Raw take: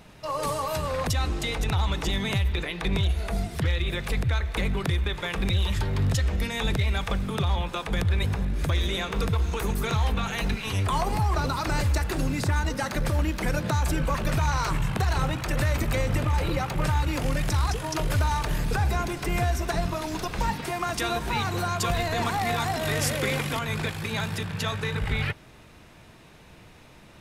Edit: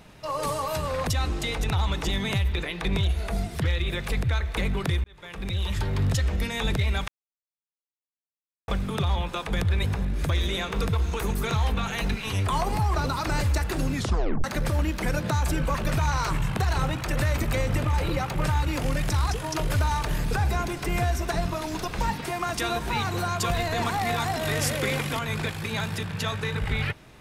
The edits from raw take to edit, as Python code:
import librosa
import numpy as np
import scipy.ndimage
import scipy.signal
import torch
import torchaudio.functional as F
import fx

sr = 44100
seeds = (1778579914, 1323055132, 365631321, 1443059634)

y = fx.edit(x, sr, fx.fade_in_span(start_s=5.04, length_s=0.83),
    fx.insert_silence(at_s=7.08, length_s=1.6),
    fx.tape_stop(start_s=12.34, length_s=0.5), tone=tone)